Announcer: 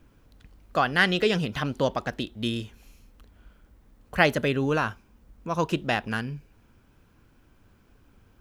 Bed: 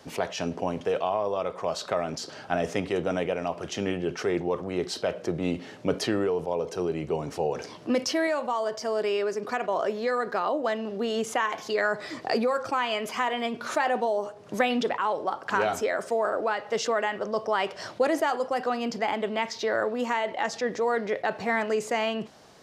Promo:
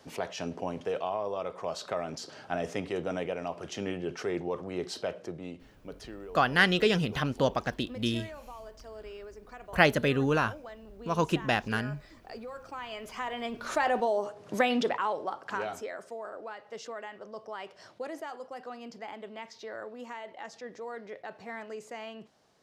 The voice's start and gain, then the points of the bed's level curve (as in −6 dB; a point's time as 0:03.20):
5.60 s, −1.5 dB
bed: 0:05.06 −5.5 dB
0:05.71 −18 dB
0:12.38 −18 dB
0:13.86 −1.5 dB
0:14.87 −1.5 dB
0:16.17 −14.5 dB